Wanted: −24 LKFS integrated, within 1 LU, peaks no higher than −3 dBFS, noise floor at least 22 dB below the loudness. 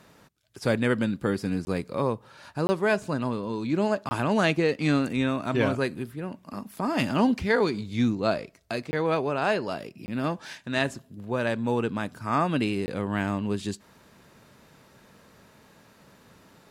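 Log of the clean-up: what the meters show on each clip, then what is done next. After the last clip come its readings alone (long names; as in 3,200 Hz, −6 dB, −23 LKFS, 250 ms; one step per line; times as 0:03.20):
number of dropouts 6; longest dropout 20 ms; integrated loudness −27.5 LKFS; sample peak −9.0 dBFS; target loudness −24.0 LKFS
→ repair the gap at 0:01.65/0:02.67/0:04.09/0:08.91/0:10.06/0:12.86, 20 ms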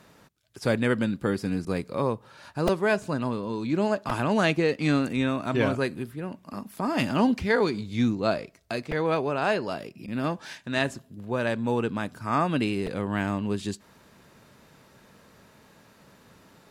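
number of dropouts 0; integrated loudness −27.5 LKFS; sample peak −9.0 dBFS; target loudness −24.0 LKFS
→ level +3.5 dB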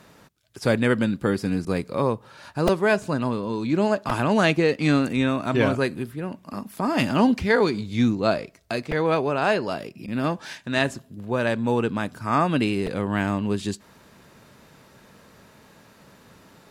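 integrated loudness −24.0 LKFS; sample peak −5.5 dBFS; background noise floor −54 dBFS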